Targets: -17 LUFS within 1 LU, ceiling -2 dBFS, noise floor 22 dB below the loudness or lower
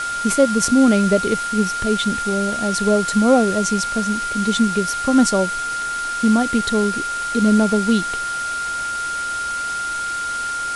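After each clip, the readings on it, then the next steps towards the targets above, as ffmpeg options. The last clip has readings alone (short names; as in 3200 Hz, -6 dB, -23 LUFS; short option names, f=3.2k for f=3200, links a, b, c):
steady tone 1400 Hz; tone level -22 dBFS; noise floor -25 dBFS; noise floor target -41 dBFS; loudness -18.5 LUFS; peak -2.5 dBFS; loudness target -17.0 LUFS
-> -af "bandreject=f=1.4k:w=30"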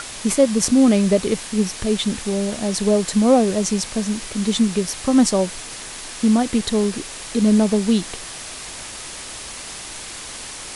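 steady tone none; noise floor -34 dBFS; noise floor target -41 dBFS
-> -af "afftdn=nr=7:nf=-34"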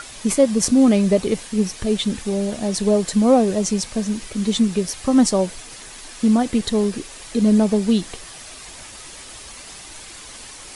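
noise floor -39 dBFS; noise floor target -41 dBFS
-> -af "afftdn=nr=6:nf=-39"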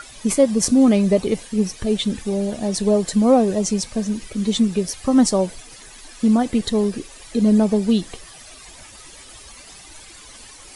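noise floor -43 dBFS; loudness -19.0 LUFS; peak -2.0 dBFS; loudness target -17.0 LUFS
-> -af "volume=2dB,alimiter=limit=-2dB:level=0:latency=1"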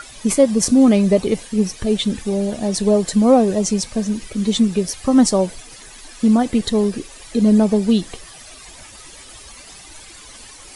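loudness -17.0 LUFS; peak -2.0 dBFS; noise floor -41 dBFS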